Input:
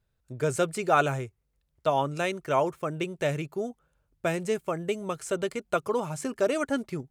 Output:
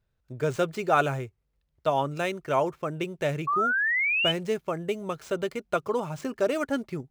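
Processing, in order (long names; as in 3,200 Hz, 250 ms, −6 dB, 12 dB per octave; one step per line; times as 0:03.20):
running median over 5 samples
sound drawn into the spectrogram rise, 0:03.47–0:04.32, 1,100–3,100 Hz −25 dBFS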